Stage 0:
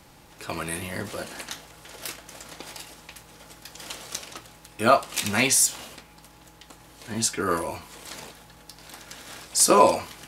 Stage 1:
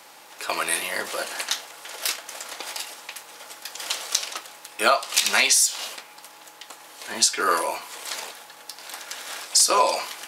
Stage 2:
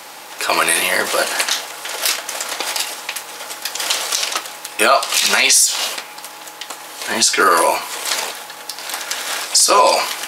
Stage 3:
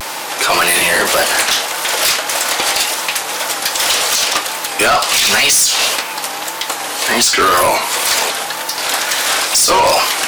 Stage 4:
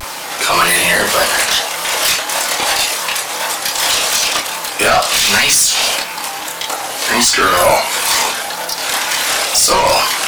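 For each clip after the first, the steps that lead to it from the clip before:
high-pass filter 590 Hz 12 dB per octave; dynamic equaliser 4,600 Hz, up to +7 dB, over −41 dBFS, Q 0.99; downward compressor 6 to 1, threshold −23 dBFS, peak gain reduction 11.5 dB; level +7.5 dB
boost into a limiter +13 dB; level −1 dB
in parallel at −1.5 dB: downward compressor, threshold −25 dBFS, peak gain reduction 16 dB; on the sum: soft clipping −15.5 dBFS, distortion −7 dB; tape wow and flutter 110 cents; level +7 dB
dead-zone distortion −37 dBFS; multi-voice chorus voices 6, 0.27 Hz, delay 29 ms, depth 1 ms; level +3.5 dB

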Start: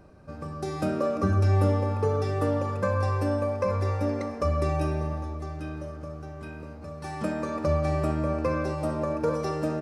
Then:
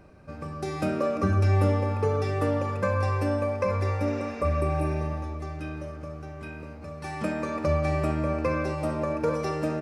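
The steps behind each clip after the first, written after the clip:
healed spectral selection 0:04.08–0:04.93, 1,200–7,600 Hz both
parametric band 2,300 Hz +6.5 dB 0.68 octaves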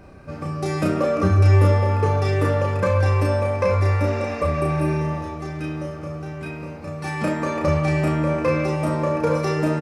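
in parallel at −8.5 dB: soft clipping −29.5 dBFS, distortion −7 dB
on the sum: double-tracking delay 33 ms −2 dB
level +3.5 dB

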